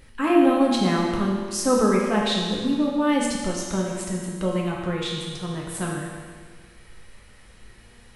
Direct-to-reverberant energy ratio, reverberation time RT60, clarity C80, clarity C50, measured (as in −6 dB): −2.5 dB, 1.7 s, 2.5 dB, 1.0 dB